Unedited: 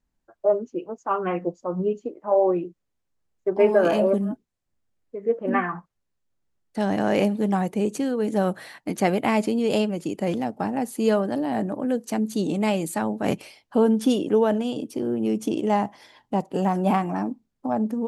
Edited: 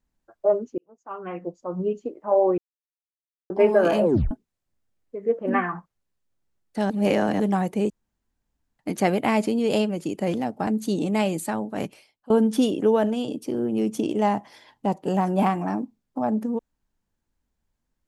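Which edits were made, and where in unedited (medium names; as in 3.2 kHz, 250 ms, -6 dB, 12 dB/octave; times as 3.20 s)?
0.78–2.05 s: fade in
2.58–3.50 s: mute
4.04 s: tape stop 0.27 s
6.90–7.40 s: reverse
7.90–8.79 s: room tone
10.67–12.15 s: delete
12.83–13.78 s: fade out, to -23 dB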